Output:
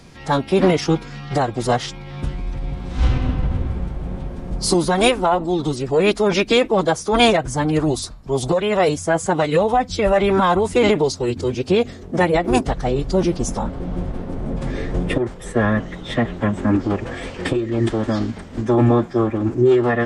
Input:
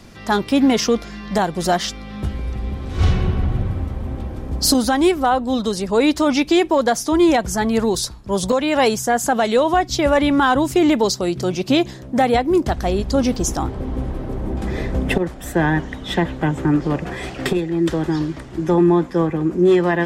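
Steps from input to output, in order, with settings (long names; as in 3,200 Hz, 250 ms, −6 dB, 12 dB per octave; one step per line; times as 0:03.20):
dynamic equaliser 5,800 Hz, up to −5 dB, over −38 dBFS, Q 0.86
phase-vocoder pitch shift with formants kept −6.5 semitones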